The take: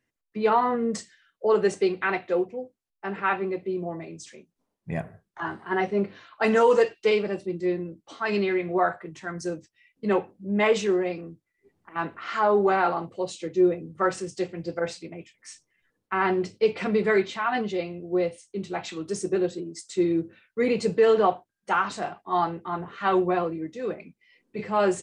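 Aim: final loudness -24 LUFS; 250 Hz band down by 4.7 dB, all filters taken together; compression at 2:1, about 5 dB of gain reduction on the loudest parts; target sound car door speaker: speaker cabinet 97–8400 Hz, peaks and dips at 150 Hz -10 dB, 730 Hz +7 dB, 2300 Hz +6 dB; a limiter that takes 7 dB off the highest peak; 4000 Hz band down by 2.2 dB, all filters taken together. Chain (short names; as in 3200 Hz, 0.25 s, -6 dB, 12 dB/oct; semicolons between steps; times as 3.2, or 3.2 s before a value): bell 250 Hz -7 dB; bell 4000 Hz -4 dB; compressor 2:1, threshold -26 dBFS; limiter -22.5 dBFS; speaker cabinet 97–8400 Hz, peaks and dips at 150 Hz -10 dB, 730 Hz +7 dB, 2300 Hz +6 dB; gain +8 dB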